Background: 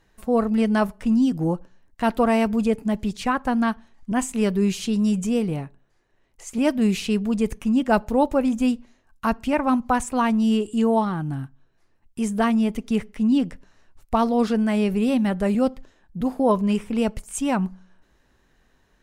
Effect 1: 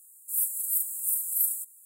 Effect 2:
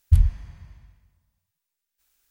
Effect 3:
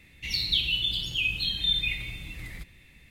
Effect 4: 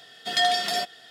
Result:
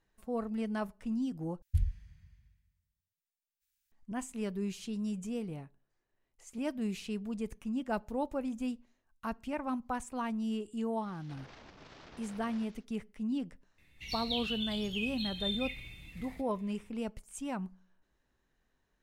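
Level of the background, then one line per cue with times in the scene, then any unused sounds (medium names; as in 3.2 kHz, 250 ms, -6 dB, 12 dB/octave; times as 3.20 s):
background -15 dB
1.62 s: replace with 2 -13.5 dB + high-order bell 580 Hz -13.5 dB 2.4 oct
11.01 s: add 1 -4.5 dB, fades 0.10 s + CVSD coder 32 kbps
13.78 s: add 3 -11 dB
not used: 4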